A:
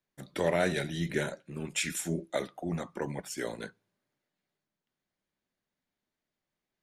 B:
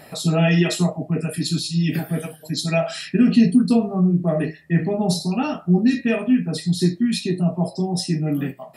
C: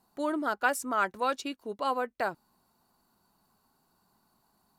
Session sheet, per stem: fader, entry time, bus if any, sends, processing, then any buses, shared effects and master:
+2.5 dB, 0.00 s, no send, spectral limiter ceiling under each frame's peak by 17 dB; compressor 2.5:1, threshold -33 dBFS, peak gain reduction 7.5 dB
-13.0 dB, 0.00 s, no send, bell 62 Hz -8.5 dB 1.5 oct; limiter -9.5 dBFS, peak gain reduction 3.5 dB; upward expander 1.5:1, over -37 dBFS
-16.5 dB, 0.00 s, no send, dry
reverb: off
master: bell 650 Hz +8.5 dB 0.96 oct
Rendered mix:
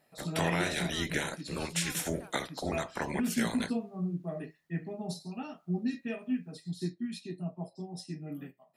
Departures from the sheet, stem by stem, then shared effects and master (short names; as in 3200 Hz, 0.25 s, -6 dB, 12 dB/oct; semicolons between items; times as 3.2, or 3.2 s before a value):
stem C -16.5 dB -> -22.5 dB; master: missing bell 650 Hz +8.5 dB 0.96 oct